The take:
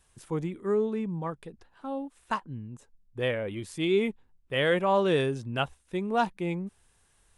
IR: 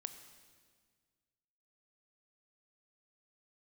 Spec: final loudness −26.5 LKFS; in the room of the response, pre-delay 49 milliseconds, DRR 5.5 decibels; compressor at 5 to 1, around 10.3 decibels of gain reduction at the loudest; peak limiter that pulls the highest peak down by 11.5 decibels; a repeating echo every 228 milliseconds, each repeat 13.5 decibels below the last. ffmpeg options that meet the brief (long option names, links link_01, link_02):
-filter_complex "[0:a]acompressor=threshold=-32dB:ratio=5,alimiter=level_in=8.5dB:limit=-24dB:level=0:latency=1,volume=-8.5dB,aecho=1:1:228|456:0.211|0.0444,asplit=2[link_01][link_02];[1:a]atrim=start_sample=2205,adelay=49[link_03];[link_02][link_03]afir=irnorm=-1:irlink=0,volume=-2.5dB[link_04];[link_01][link_04]amix=inputs=2:normalize=0,volume=14dB"